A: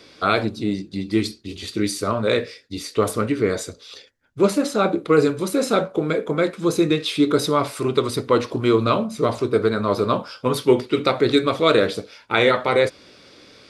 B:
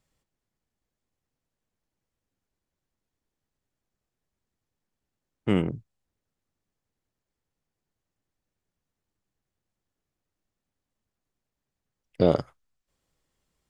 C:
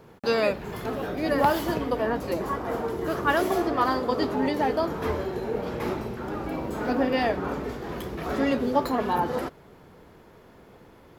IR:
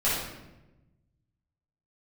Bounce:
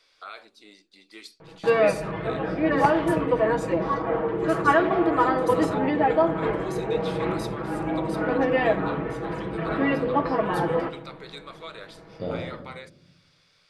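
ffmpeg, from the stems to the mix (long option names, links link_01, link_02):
-filter_complex "[0:a]highpass=800,alimiter=limit=-15.5dB:level=0:latency=1:release=292,volume=-13.5dB[link_01];[1:a]volume=-16.5dB,asplit=2[link_02][link_03];[link_03]volume=-7dB[link_04];[2:a]lowpass=frequency=2800:width=0.5412,lowpass=frequency=2800:width=1.3066,aecho=1:1:6.2:0.9,adelay=1400,volume=0dB,asplit=2[link_05][link_06];[link_06]volume=-23.5dB[link_07];[3:a]atrim=start_sample=2205[link_08];[link_04][link_07]amix=inputs=2:normalize=0[link_09];[link_09][link_08]afir=irnorm=-1:irlink=0[link_10];[link_01][link_02][link_05][link_10]amix=inputs=4:normalize=0"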